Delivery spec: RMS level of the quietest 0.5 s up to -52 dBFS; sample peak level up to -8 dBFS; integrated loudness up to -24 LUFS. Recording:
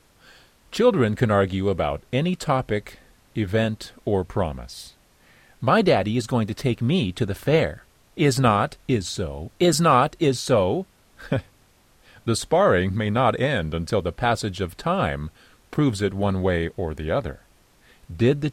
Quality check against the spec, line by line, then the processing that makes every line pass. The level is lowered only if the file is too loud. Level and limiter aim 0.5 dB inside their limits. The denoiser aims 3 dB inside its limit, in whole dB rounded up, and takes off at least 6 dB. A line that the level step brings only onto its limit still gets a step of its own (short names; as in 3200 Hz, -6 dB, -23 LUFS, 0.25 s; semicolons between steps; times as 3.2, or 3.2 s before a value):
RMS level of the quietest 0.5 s -58 dBFS: OK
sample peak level -5.0 dBFS: fail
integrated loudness -23.0 LUFS: fail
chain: gain -1.5 dB; limiter -8.5 dBFS